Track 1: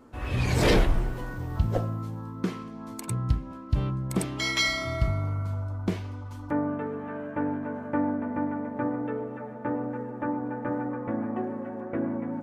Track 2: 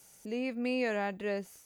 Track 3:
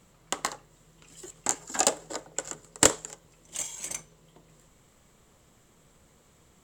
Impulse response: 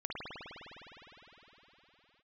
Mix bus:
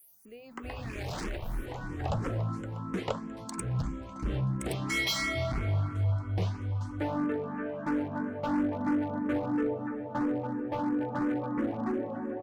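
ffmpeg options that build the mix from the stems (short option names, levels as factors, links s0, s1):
-filter_complex "[0:a]lowpass=9100,asoftclip=type=hard:threshold=0.0473,adelay=500,volume=1.26,asplit=2[s0][s1];[s1]volume=0.106[s2];[1:a]aexciter=amount=4.6:drive=9:freq=10000,volume=0.282,asplit=2[s3][s4];[2:a]lowpass=2000,adelay=250,volume=0.531[s5];[s4]apad=whole_len=569921[s6];[s0][s6]sidechaincompress=threshold=0.00398:ratio=4:attack=16:release=1270[s7];[3:a]atrim=start_sample=2205[s8];[s2][s8]afir=irnorm=-1:irlink=0[s9];[s7][s3][s5][s9]amix=inputs=4:normalize=0,asplit=2[s10][s11];[s11]afreqshift=3[s12];[s10][s12]amix=inputs=2:normalize=1"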